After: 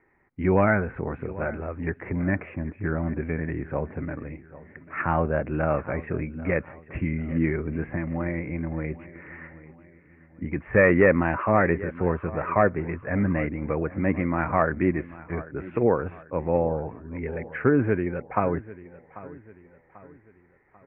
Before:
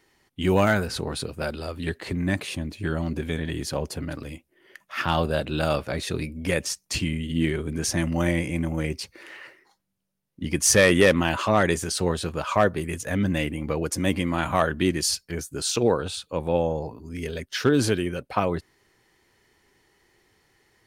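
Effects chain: steep low-pass 2.3 kHz 72 dB/octave; 7.91–10.56 s: compression 2:1, threshold -28 dBFS, peak gain reduction 6 dB; feedback delay 791 ms, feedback 43%, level -18 dB

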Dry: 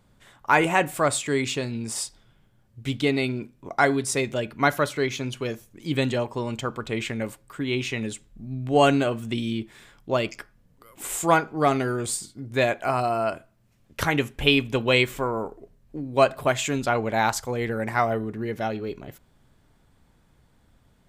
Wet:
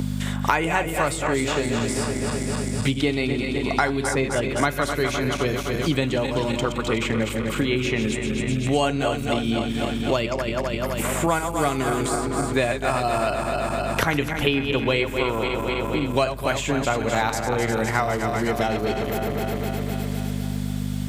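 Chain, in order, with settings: backward echo that repeats 128 ms, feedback 76%, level -8 dB; hum 50 Hz, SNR 12 dB; three bands compressed up and down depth 100%

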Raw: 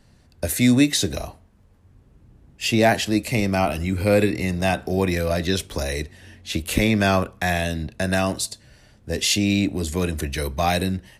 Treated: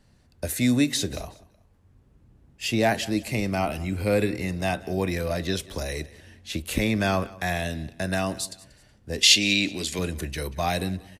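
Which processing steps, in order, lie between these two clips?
9.23–9.99 s: frequency weighting D; on a send: feedback delay 186 ms, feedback 32%, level -20.5 dB; on the sum: trim -5 dB

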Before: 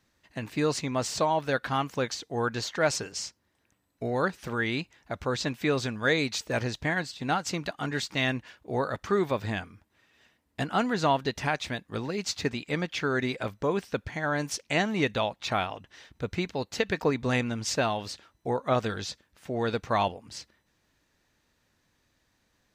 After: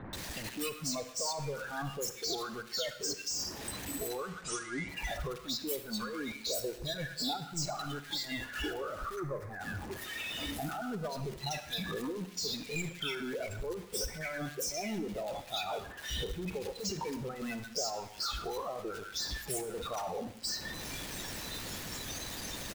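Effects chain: one-bit comparator; 4.04–4.76 s: Chebyshev low-pass 9.3 kHz, order 6; spectral noise reduction 17 dB; 6.64–7.37 s: peaking EQ 460 Hz +13 dB 0.86 oct; harmonic-percussive split percussive +8 dB; 9.04–9.48 s: resonant high shelf 2.3 kHz -8 dB, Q 3; compression 4:1, threshold -38 dBFS, peak gain reduction 13 dB; bands offset in time lows, highs 130 ms, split 1.5 kHz; reverberation RT60 0.70 s, pre-delay 43 ms, DRR 11 dB; trim +1.5 dB

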